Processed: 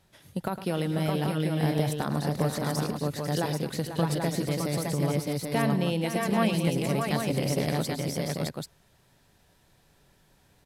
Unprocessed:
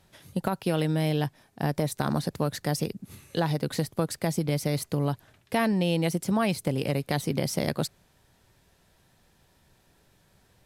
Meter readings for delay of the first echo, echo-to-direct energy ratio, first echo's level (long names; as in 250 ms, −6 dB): 107 ms, 0.5 dB, −12.0 dB